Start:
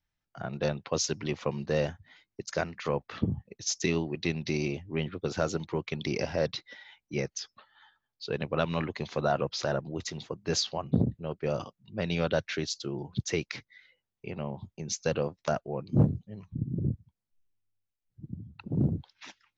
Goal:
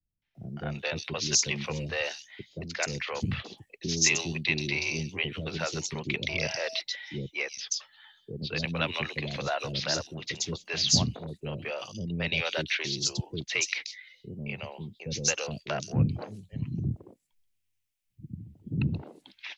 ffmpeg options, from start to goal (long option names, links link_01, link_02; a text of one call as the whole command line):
ffmpeg -i in.wav -filter_complex "[0:a]acrossover=split=180|710[link_01][link_02][link_03];[link_02]asoftclip=type=tanh:threshold=-29.5dB[link_04];[link_03]highshelf=frequency=1700:width_type=q:width=1.5:gain=8.5[link_05];[link_01][link_04][link_05]amix=inputs=3:normalize=0,acrossover=split=420|4200[link_06][link_07][link_08];[link_07]adelay=220[link_09];[link_08]adelay=350[link_10];[link_06][link_09][link_10]amix=inputs=3:normalize=0,asettb=1/sr,asplit=3[link_11][link_12][link_13];[link_11]atrim=end=6.294[link_14];[link_12]atrim=start=6.29:end=6.8,asetpts=PTS-STARTPTS,afade=type=in:duration=0.004:curve=qsin,afade=type=out:start_time=0.506:duration=0.004:curve=qsin,aeval=exprs='val(0)+0.01*sin(2*PI*650*n/s)':channel_layout=same[link_15];[link_13]atrim=start=6.796[link_16];[link_14][link_15]acrossfade=duration=0.004:curve1=hsin:curve2=qsin[link_17];[link_17][link_16]acrossfade=duration=0.004:curve1=qsin:curve2=hsin" out.wav